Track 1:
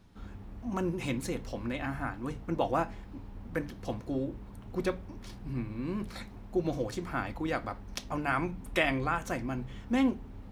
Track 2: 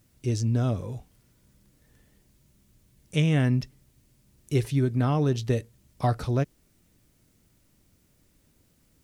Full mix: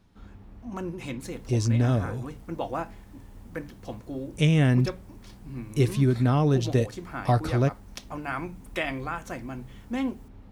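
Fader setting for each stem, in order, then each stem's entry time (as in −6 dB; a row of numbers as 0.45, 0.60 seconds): −2.0, +2.0 decibels; 0.00, 1.25 seconds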